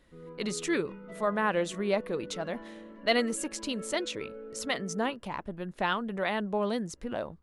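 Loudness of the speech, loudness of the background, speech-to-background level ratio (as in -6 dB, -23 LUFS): -32.0 LUFS, -45.5 LUFS, 13.5 dB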